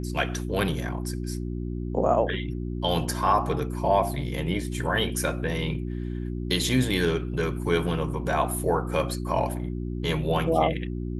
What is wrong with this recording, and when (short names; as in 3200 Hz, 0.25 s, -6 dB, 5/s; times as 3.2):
hum 60 Hz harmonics 6 -31 dBFS